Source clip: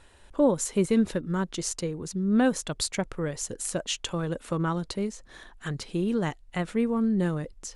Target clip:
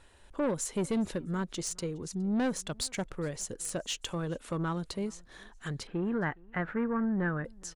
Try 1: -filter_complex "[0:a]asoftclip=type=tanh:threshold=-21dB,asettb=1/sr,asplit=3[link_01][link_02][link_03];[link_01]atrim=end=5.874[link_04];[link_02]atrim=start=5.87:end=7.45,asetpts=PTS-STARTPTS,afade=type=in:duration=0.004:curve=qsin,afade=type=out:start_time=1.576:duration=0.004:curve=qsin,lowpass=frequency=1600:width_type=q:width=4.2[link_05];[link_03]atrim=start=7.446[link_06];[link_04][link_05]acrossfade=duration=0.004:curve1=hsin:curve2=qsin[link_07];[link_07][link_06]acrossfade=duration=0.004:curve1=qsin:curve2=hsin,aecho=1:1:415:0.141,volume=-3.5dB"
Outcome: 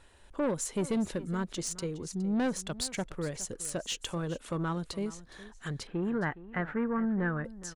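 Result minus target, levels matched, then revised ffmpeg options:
echo-to-direct +9.5 dB
-filter_complex "[0:a]asoftclip=type=tanh:threshold=-21dB,asettb=1/sr,asplit=3[link_01][link_02][link_03];[link_01]atrim=end=5.874[link_04];[link_02]atrim=start=5.87:end=7.45,asetpts=PTS-STARTPTS,afade=type=in:duration=0.004:curve=qsin,afade=type=out:start_time=1.576:duration=0.004:curve=qsin,lowpass=frequency=1600:width_type=q:width=4.2[link_05];[link_03]atrim=start=7.446[link_06];[link_04][link_05]acrossfade=duration=0.004:curve1=hsin:curve2=qsin[link_07];[link_07][link_06]acrossfade=duration=0.004:curve1=qsin:curve2=hsin,aecho=1:1:415:0.0473,volume=-3.5dB"

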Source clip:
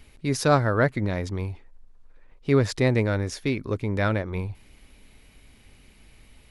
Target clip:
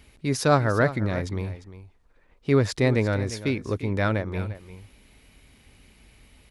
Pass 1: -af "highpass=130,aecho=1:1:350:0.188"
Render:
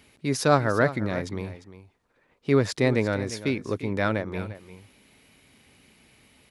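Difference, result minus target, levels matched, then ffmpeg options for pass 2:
125 Hz band −3.0 dB
-af "highpass=33,aecho=1:1:350:0.188"

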